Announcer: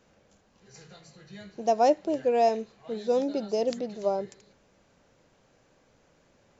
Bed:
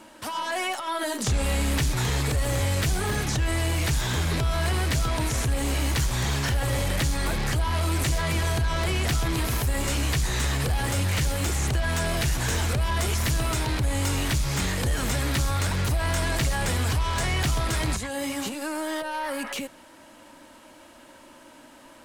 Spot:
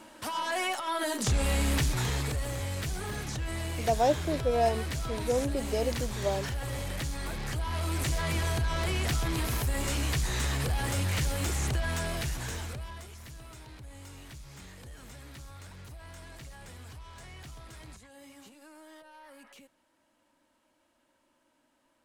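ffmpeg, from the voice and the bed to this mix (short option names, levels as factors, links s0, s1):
-filter_complex "[0:a]adelay=2200,volume=0.668[s0];[1:a]volume=1.33,afade=t=out:st=1.74:d=0.82:silence=0.446684,afade=t=in:st=7.38:d=0.88:silence=0.562341,afade=t=out:st=11.71:d=1.37:silence=0.133352[s1];[s0][s1]amix=inputs=2:normalize=0"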